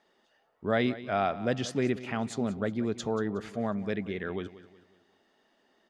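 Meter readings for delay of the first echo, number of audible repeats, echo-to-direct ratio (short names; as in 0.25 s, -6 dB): 0.183 s, 3, -15.0 dB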